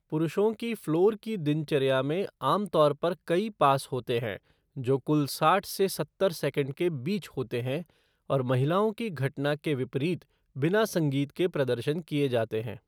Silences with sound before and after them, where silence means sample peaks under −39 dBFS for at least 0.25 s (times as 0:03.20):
0:04.37–0:04.77
0:07.82–0:08.30
0:10.22–0:10.56